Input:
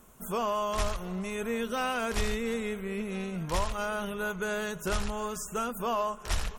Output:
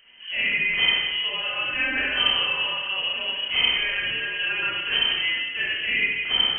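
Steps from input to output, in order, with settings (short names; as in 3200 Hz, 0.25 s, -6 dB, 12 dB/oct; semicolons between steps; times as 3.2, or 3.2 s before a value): Schroeder reverb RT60 1.1 s, combs from 29 ms, DRR -6 dB; inverted band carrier 3100 Hz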